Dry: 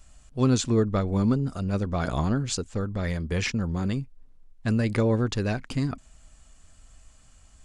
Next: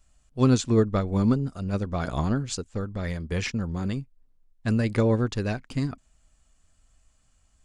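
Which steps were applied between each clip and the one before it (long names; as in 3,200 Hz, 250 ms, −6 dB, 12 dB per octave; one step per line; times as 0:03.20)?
expander for the loud parts 1.5 to 1, over −43 dBFS
level +2.5 dB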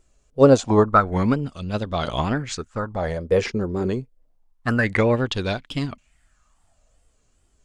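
dynamic equaliser 800 Hz, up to +7 dB, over −39 dBFS, Q 0.75
tape wow and flutter 120 cents
auto-filter bell 0.27 Hz 380–3,500 Hz +15 dB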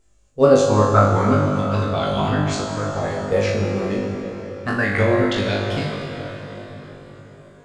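on a send: flutter between parallel walls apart 3.4 metres, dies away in 0.49 s
on the sum: dense smooth reverb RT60 4.9 s, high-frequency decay 0.7×, DRR 2 dB
level −2.5 dB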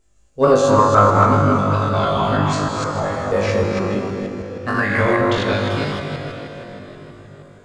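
delay that plays each chunk backwards 158 ms, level −2 dB
soft clipping −2 dBFS, distortion −25 dB
dynamic equaliser 1,100 Hz, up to +7 dB, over −35 dBFS, Q 1.9
level −1 dB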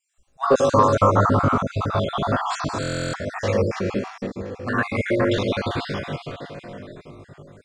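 time-frequency cells dropped at random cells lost 39%
buffer that repeats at 0:02.81, samples 1,024, times 13
level −2 dB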